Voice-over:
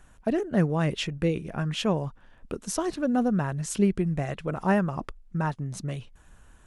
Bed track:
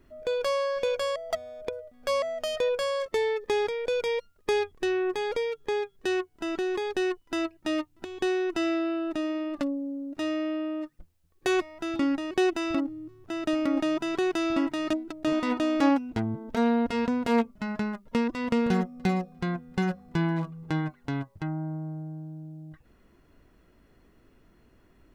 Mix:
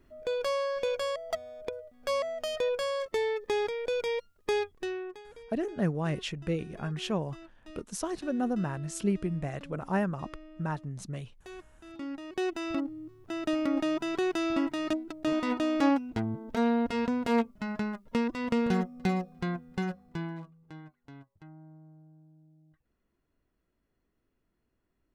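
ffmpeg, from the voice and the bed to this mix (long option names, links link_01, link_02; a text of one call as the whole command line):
ffmpeg -i stem1.wav -i stem2.wav -filter_complex "[0:a]adelay=5250,volume=-5.5dB[link_01];[1:a]volume=15.5dB,afade=type=out:start_time=4.58:duration=0.65:silence=0.125893,afade=type=in:start_time=11.79:duration=1.22:silence=0.11885,afade=type=out:start_time=19.47:duration=1.12:silence=0.158489[link_02];[link_01][link_02]amix=inputs=2:normalize=0" out.wav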